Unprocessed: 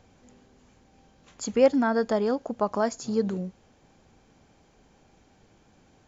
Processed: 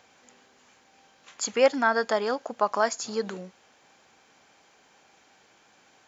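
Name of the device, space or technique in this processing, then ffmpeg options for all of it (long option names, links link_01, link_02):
filter by subtraction: -filter_complex "[0:a]asplit=2[link_01][link_02];[link_02]lowpass=1600,volume=-1[link_03];[link_01][link_03]amix=inputs=2:normalize=0,volume=5.5dB"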